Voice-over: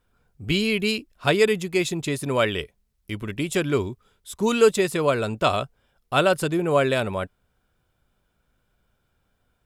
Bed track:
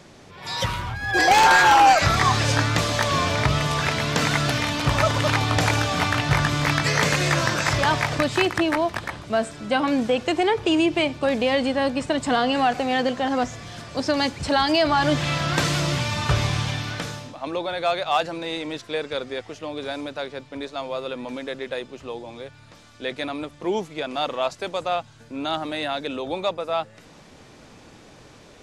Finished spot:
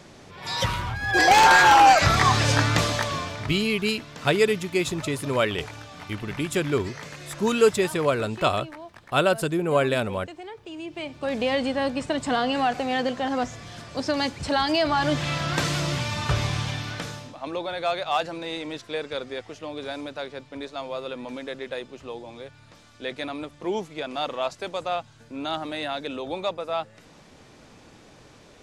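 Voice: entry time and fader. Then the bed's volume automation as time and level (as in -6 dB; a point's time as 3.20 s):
3.00 s, -1.5 dB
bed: 2.84 s 0 dB
3.68 s -19 dB
10.72 s -19 dB
11.41 s -3 dB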